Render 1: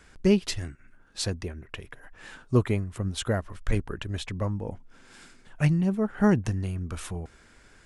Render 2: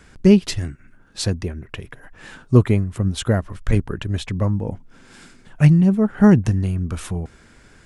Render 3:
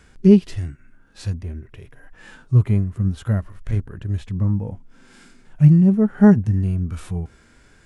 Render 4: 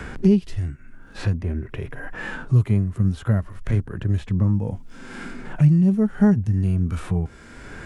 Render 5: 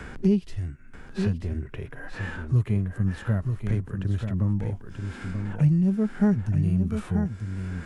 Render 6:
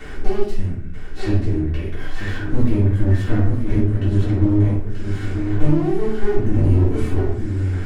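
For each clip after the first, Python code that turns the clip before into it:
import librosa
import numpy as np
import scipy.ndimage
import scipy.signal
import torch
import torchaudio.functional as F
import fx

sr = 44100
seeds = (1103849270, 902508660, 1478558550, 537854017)

y1 = fx.peak_eq(x, sr, hz=150.0, db=6.0, octaves=2.3)
y1 = F.gain(torch.from_numpy(y1), 4.5).numpy()
y2 = fx.hpss(y1, sr, part='percussive', gain_db=-17)
y2 = F.gain(torch.from_numpy(y2), 1.0).numpy()
y3 = fx.band_squash(y2, sr, depth_pct=70)
y4 = y3 + 10.0 ** (-6.5 / 20.0) * np.pad(y3, (int(935 * sr / 1000.0), 0))[:len(y3)]
y4 = F.gain(torch.from_numpy(y4), -5.0).numpy()
y5 = fx.lower_of_two(y4, sr, delay_ms=2.7)
y5 = fx.room_shoebox(y5, sr, seeds[0], volume_m3=110.0, walls='mixed', distance_m=2.1)
y5 = F.gain(torch.from_numpy(y5), -1.5).numpy()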